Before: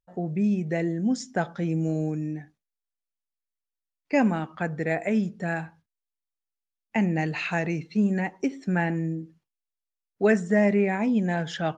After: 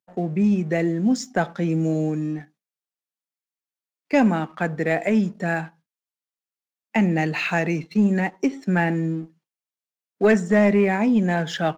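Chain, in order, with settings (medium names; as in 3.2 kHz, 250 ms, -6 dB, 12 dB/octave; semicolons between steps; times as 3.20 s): high-pass 150 Hz 24 dB/octave; waveshaping leveller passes 1; trim +1.5 dB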